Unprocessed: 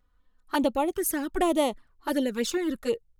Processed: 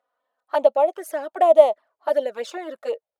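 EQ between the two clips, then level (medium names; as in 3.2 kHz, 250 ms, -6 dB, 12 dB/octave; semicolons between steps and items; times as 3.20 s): resonant high-pass 630 Hz, resonance Q 7.7; low-pass 2.6 kHz 6 dB/octave; -1.0 dB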